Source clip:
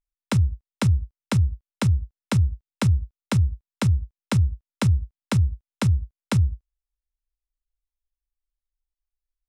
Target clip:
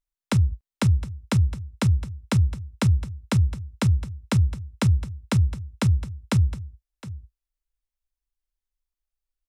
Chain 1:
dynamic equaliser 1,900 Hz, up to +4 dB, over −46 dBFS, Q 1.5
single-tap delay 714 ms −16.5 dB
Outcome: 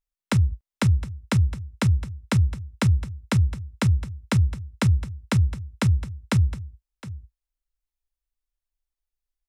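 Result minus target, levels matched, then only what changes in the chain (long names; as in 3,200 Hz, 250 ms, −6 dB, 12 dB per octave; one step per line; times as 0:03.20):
2,000 Hz band +2.5 dB
remove: dynamic equaliser 1,900 Hz, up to +4 dB, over −46 dBFS, Q 1.5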